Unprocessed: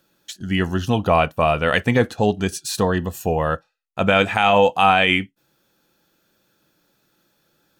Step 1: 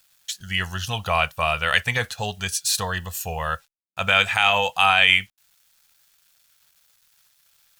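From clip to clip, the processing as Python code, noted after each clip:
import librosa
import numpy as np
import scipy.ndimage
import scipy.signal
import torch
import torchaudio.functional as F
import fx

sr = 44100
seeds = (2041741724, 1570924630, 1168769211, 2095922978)

y = fx.quant_dither(x, sr, seeds[0], bits=10, dither='none')
y = fx.tone_stack(y, sr, knobs='10-0-10')
y = y * librosa.db_to_amplitude(6.0)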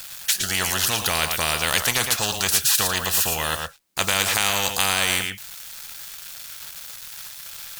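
y = x + 10.0 ** (-16.0 / 20.0) * np.pad(x, (int(112 * sr / 1000.0), 0))[:len(x)]
y = fx.spectral_comp(y, sr, ratio=4.0)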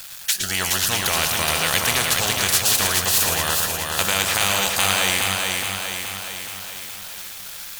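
y = fx.echo_feedback(x, sr, ms=421, feedback_pct=58, wet_db=-3.5)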